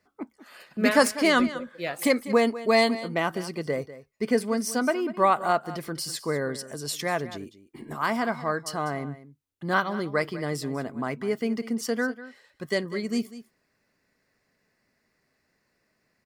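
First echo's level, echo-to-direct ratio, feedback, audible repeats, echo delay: -15.5 dB, -15.5 dB, no steady repeat, 1, 0.196 s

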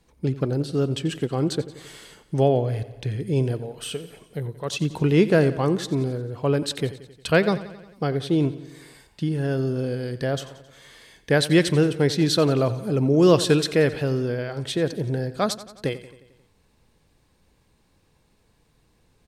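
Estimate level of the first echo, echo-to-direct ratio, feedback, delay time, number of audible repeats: -16.0 dB, -14.0 dB, 60%, 89 ms, 5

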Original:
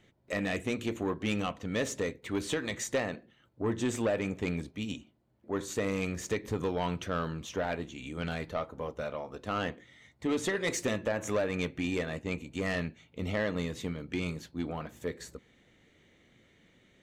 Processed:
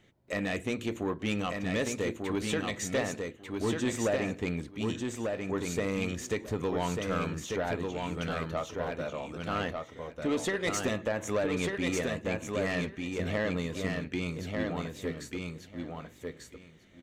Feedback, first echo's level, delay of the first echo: 16%, -4.0 dB, 1.194 s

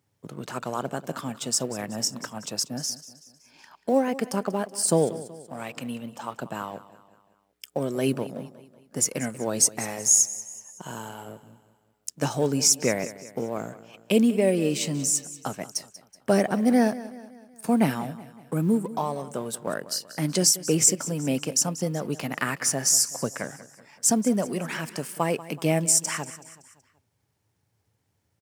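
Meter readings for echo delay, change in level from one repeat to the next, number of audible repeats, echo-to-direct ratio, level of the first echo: 0.188 s, -6.0 dB, 3, -15.5 dB, -16.5 dB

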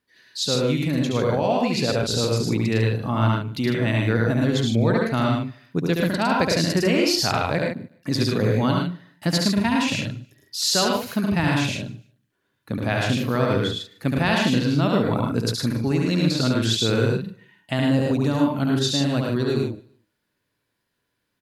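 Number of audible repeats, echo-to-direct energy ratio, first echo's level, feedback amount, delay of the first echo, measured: 6, 1.0 dB, -3.5 dB, no steady repeat, 71 ms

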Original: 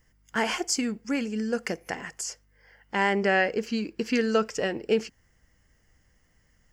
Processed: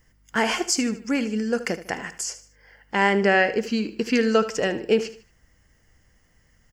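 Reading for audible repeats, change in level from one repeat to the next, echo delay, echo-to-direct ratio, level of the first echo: 3, -9.0 dB, 76 ms, -13.5 dB, -14.0 dB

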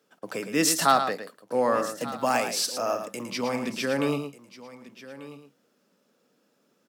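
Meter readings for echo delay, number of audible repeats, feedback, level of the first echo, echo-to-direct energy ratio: 0.111 s, 3, no steady repeat, -8.5 dB, -8.0 dB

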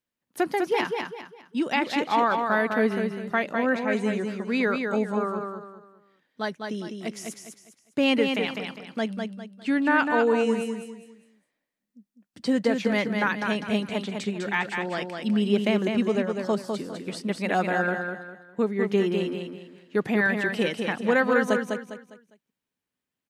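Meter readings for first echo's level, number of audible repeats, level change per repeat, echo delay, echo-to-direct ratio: -5.0 dB, 4, -9.5 dB, 0.202 s, -4.5 dB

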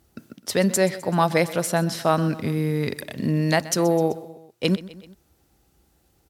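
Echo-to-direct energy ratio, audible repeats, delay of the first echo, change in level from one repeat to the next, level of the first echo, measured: -16.0 dB, 3, 0.128 s, -4.5 dB, -17.5 dB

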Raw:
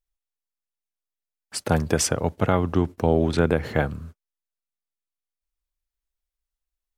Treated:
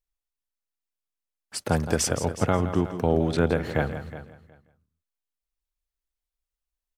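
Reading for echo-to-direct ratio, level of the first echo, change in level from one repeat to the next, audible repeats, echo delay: -10.0 dB, -11.5 dB, no steady repeat, 4, 0.167 s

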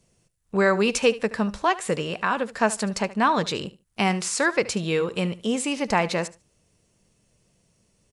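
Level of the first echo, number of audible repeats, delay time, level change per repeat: -18.0 dB, 2, 74 ms, -15.0 dB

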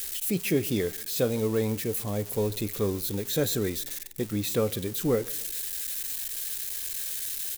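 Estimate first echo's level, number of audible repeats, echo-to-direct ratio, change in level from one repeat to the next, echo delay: -23.0 dB, 2, -22.0 dB, -8.0 dB, 0.142 s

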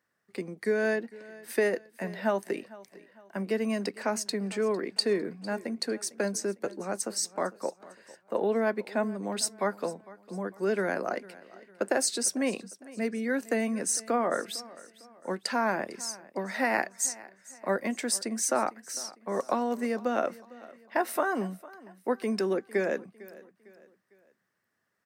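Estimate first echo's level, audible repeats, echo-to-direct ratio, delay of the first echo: -20.0 dB, 2, -19.0 dB, 0.453 s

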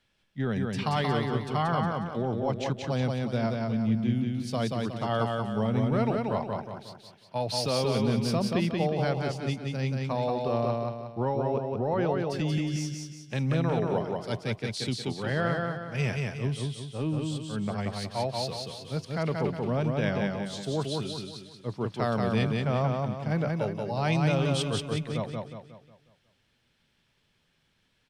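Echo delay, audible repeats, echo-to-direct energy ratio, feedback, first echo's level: 0.181 s, 5, -2.0 dB, 43%, -3.0 dB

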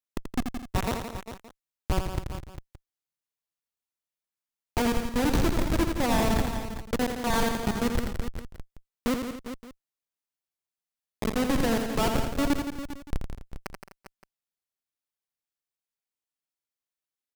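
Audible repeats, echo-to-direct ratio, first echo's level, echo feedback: 6, -3.0 dB, -6.5 dB, no steady repeat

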